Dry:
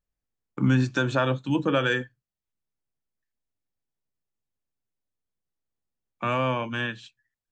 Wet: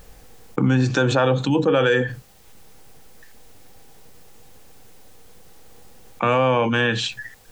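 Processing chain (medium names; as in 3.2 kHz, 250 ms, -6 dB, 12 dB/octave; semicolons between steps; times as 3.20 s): small resonant body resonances 480/780 Hz, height 10 dB, ringing for 45 ms; level flattener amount 70%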